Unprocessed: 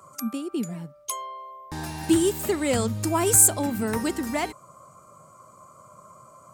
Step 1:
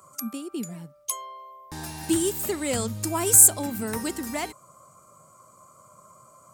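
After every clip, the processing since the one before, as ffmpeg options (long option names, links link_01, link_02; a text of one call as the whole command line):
ffmpeg -i in.wav -af "highshelf=frequency=4700:gain=8,volume=-4dB" out.wav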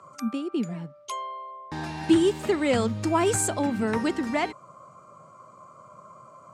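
ffmpeg -i in.wav -af "highpass=110,lowpass=3200,volume=5dB" out.wav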